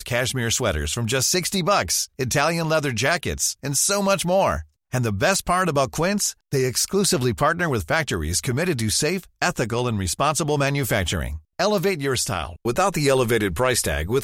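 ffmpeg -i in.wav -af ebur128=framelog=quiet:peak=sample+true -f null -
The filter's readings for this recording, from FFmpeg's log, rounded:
Integrated loudness:
  I:         -21.6 LUFS
  Threshold: -31.6 LUFS
Loudness range:
  LRA:         1.7 LU
  Threshold: -41.7 LUFS
  LRA low:   -22.6 LUFS
  LRA high:  -20.9 LUFS
Sample peak:
  Peak:       -6.7 dBFS
True peak:
  Peak:       -6.6 dBFS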